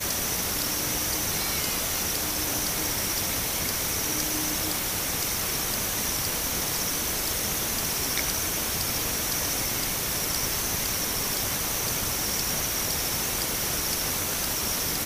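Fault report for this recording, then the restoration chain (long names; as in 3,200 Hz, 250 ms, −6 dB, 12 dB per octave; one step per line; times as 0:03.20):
0:03.90: click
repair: click removal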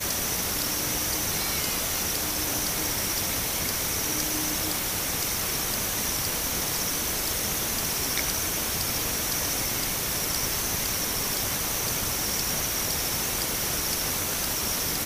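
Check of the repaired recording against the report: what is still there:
none of them is left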